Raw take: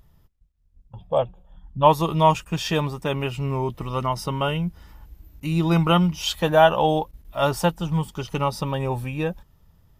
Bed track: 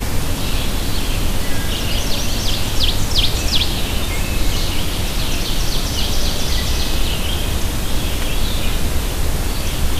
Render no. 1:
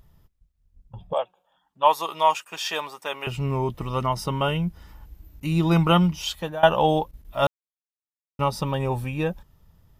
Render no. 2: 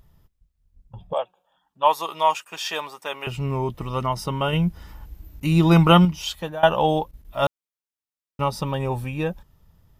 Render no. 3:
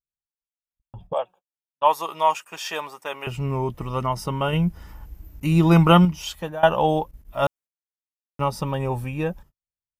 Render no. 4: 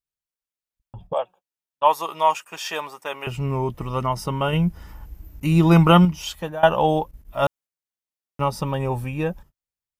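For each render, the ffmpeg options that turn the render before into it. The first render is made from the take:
-filter_complex "[0:a]asettb=1/sr,asplit=3[a][b][c];[a]atrim=end=1.134[d];[b]atrim=start=1.13:end=3.27,asetpts=PTS-STARTPTS,afade=t=in:d=0.004:c=qsin,afade=t=out:st=2.136:d=0.004:c=qsin,highpass=700[e];[c]atrim=start=3.266[f];[d][e]acrossfade=d=0.004:c1=hsin:c2=qsin[g];[g][f]acrossfade=d=0.004:c1=qsin:c2=hsin,asplit=4[h][i][j][k];[h]atrim=end=6.63,asetpts=PTS-STARTPTS,afade=t=out:st=6.07:d=0.56:silence=0.0944061[l];[i]atrim=start=6.63:end=7.47,asetpts=PTS-STARTPTS,afade=t=in:d=0.004:c=hsin:silence=0.0944061,afade=t=out:st=0.836:d=0.004:c=hsin[m];[j]atrim=start=7.47:end=8.39,asetpts=PTS-STARTPTS,volume=0[n];[k]atrim=start=8.39,asetpts=PTS-STARTPTS,afade=t=in:d=0.004:c=hsin[o];[l][m][n][o]concat=n=4:v=0:a=1"
-filter_complex "[0:a]asettb=1/sr,asplit=3[a][b][c];[a]atrim=end=1.214[d];[b]atrim=start=1.21:end=1.87,asetpts=PTS-STARTPTS,afade=t=in:d=0.004:c=qsin,afade=t=out:st=0.656:d=0.004:c=qsin,bandreject=f=2.1k:w=12[e];[c]atrim=start=1.866[f];[d][e]acrossfade=d=0.004:c1=hsin:c2=qsin[g];[g][f]acrossfade=d=0.004:c1=qsin:c2=hsin,asplit=3[h][i][j];[h]atrim=end=4.532[k];[i]atrim=start=4.528:end=6.052,asetpts=PTS-STARTPTS,volume=4.5dB[l];[j]atrim=start=6.048[m];[k][l]acrossfade=d=0.004:c1=hsin:c2=hsin[n];[n][m]acrossfade=d=0.004:c1=hsin:c2=hsin"
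-af "agate=range=-49dB:threshold=-45dB:ratio=16:detection=peak,equalizer=f=3.8k:w=2:g=-5.5"
-af "volume=1dB,alimiter=limit=-2dB:level=0:latency=1"

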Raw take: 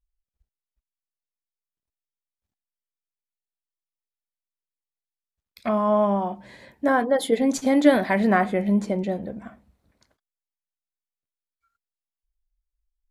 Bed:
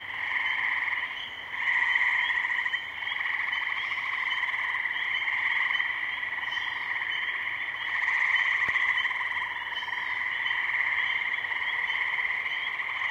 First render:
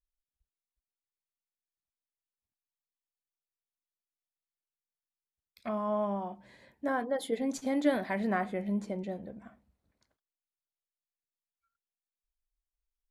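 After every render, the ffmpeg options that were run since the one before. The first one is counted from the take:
-af "volume=-11dB"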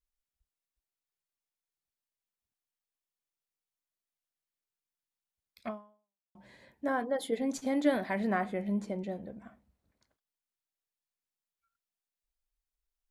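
-filter_complex "[0:a]asplit=2[a][b];[a]atrim=end=6.35,asetpts=PTS-STARTPTS,afade=t=out:st=5.68:d=0.67:c=exp[c];[b]atrim=start=6.35,asetpts=PTS-STARTPTS,afade=t=in:d=0.004:c=hsin[d];[c][d]concat=n=2:v=0:a=1"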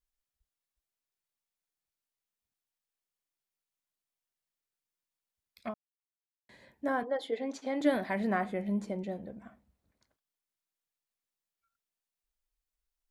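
-filter_complex "[0:a]asettb=1/sr,asplit=3[a][b][c];[a]atrim=end=7.034[d];[b]atrim=start=7.03:end=7.81,asetpts=PTS-STARTPTS,afade=t=in:d=0.004:c=qsin,afade=t=out:st=0.776:d=0.004:c=qsin,acrossover=split=270 5600:gain=0.0631 1 0.126[e][f][g];[e][f][g]amix=inputs=3:normalize=0[h];[c]atrim=start=7.806[i];[d][h]acrossfade=d=0.004:c1=hsin:c2=qsin[j];[j][i]acrossfade=d=0.004:c1=qsin:c2=hsin,asplit=3[k][l][m];[k]atrim=end=5.74,asetpts=PTS-STARTPTS,afade=t=out:st=5.736:d=0.004:c=hsin[n];[l]atrim=start=5.74:end=6.49,asetpts=PTS-STARTPTS,volume=0[o];[m]atrim=start=6.49,asetpts=PTS-STARTPTS,afade=t=in:d=0.004:c=hsin[p];[n][o][p]concat=n=3:v=0:a=1"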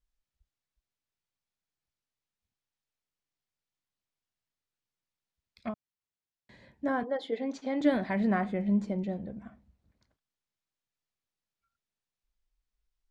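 -af "lowpass=5.9k,bass=f=250:g=8,treble=f=4k:g=1"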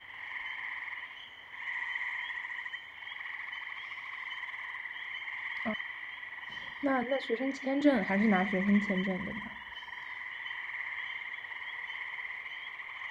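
-filter_complex "[1:a]volume=-11.5dB[a];[0:a][a]amix=inputs=2:normalize=0"

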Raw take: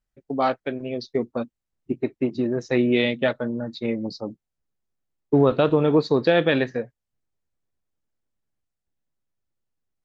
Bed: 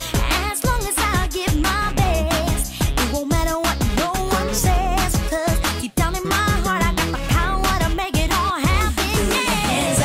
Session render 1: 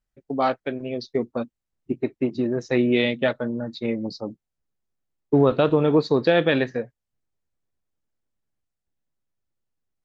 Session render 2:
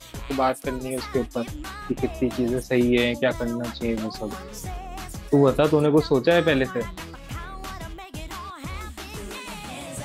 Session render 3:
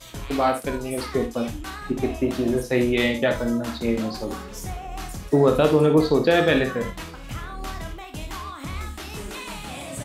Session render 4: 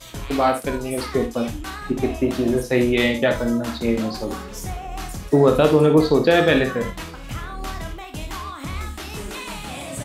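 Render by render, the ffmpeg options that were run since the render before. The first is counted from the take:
-af anull
-filter_complex "[1:a]volume=-16.5dB[a];[0:a][a]amix=inputs=2:normalize=0"
-filter_complex "[0:a]asplit=2[a][b];[b]adelay=26,volume=-9dB[c];[a][c]amix=inputs=2:normalize=0,asplit=2[d][e];[e]aecho=0:1:55|77:0.355|0.188[f];[d][f]amix=inputs=2:normalize=0"
-af "volume=2.5dB"

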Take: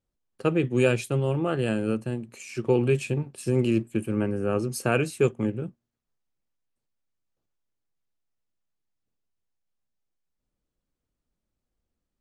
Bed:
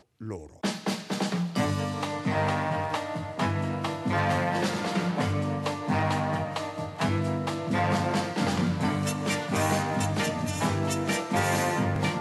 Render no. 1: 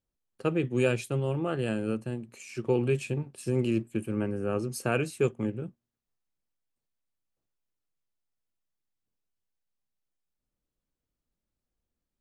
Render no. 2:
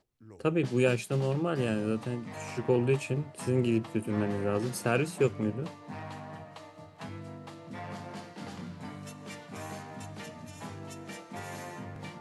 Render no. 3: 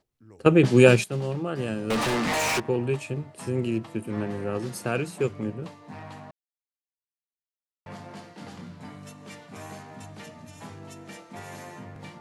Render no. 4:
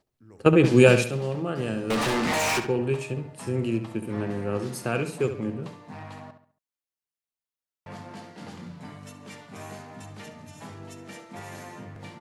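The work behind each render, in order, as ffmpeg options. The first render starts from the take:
-af "volume=-4dB"
-filter_complex "[1:a]volume=-15.5dB[a];[0:a][a]amix=inputs=2:normalize=0"
-filter_complex "[0:a]asettb=1/sr,asplit=3[a][b][c];[a]atrim=end=1.904[d];[b]atrim=start=1.9:end=2.6,asetpts=PTS-STARTPTS,afade=t=in:d=0.004:c=qsin,afade=t=out:st=0.696:d=0.004:c=qsin,asplit=2[e][f];[f]highpass=f=720:p=1,volume=38dB,asoftclip=type=tanh:threshold=-18dB[g];[e][g]amix=inputs=2:normalize=0,lowpass=f=7.7k:p=1,volume=-6dB[h];[c]atrim=start=2.596[i];[d][h]acrossfade=d=0.004:c1=hsin:c2=qsin[j];[j][i]acrossfade=d=0.004:c1=qsin:c2=hsin,asplit=5[k][l][m][n][o];[k]atrim=end=0.462[p];[l]atrim=start=0.458:end=1.042,asetpts=PTS-STARTPTS,volume=10.5dB[q];[m]atrim=start=1.038:end=6.31,asetpts=PTS-STARTPTS,afade=t=out:st=5.268:d=0.004:c=hsin[r];[n]atrim=start=6.31:end=7.86,asetpts=PTS-STARTPTS,volume=0[s];[o]atrim=start=7.86,asetpts=PTS-STARTPTS,afade=t=in:d=0.004:c=hsin[t];[p][q]acrossfade=d=0.004:c1=hsin:c2=hsin[u];[r][s][t]concat=n=3:v=0:a=1[v];[u][v]acrossfade=d=0.004:c1=hsin:c2=hsin"
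-filter_complex "[0:a]asplit=2[a][b];[b]adelay=69,lowpass=f=4.1k:p=1,volume=-9dB,asplit=2[c][d];[d]adelay=69,lowpass=f=4.1k:p=1,volume=0.38,asplit=2[e][f];[f]adelay=69,lowpass=f=4.1k:p=1,volume=0.38,asplit=2[g][h];[h]adelay=69,lowpass=f=4.1k:p=1,volume=0.38[i];[a][c][e][g][i]amix=inputs=5:normalize=0"

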